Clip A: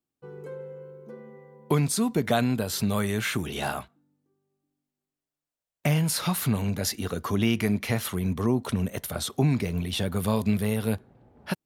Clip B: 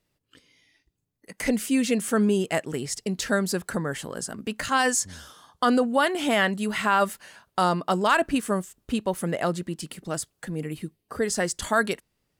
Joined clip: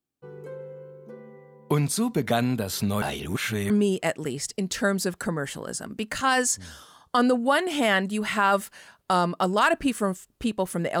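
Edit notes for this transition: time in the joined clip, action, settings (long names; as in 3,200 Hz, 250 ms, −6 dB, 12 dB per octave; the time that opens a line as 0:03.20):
clip A
0:03.02–0:03.70: reverse
0:03.70: continue with clip B from 0:02.18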